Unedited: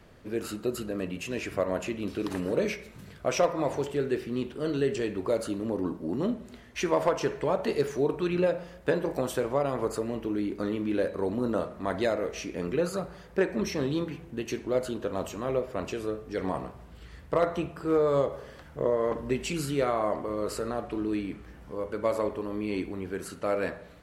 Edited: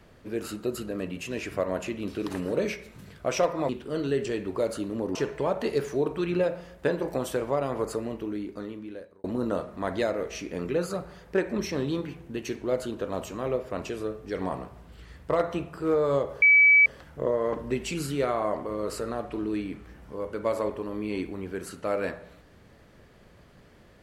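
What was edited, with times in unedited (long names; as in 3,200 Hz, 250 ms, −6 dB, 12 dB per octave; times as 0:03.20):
0:03.69–0:04.39: remove
0:05.85–0:07.18: remove
0:10.00–0:11.27: fade out linear
0:18.45: insert tone 2,290 Hz −13.5 dBFS 0.44 s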